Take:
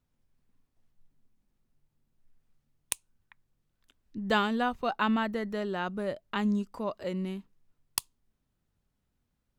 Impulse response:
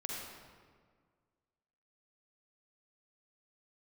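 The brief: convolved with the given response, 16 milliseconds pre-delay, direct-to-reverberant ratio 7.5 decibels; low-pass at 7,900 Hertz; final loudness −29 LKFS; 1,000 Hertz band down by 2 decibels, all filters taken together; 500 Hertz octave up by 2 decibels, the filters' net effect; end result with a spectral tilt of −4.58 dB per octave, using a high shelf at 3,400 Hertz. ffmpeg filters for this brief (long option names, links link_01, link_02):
-filter_complex "[0:a]lowpass=7900,equalizer=frequency=500:width_type=o:gain=3.5,equalizer=frequency=1000:width_type=o:gain=-3.5,highshelf=frequency=3400:gain=-4.5,asplit=2[link_01][link_02];[1:a]atrim=start_sample=2205,adelay=16[link_03];[link_02][link_03]afir=irnorm=-1:irlink=0,volume=-8.5dB[link_04];[link_01][link_04]amix=inputs=2:normalize=0,volume=2dB"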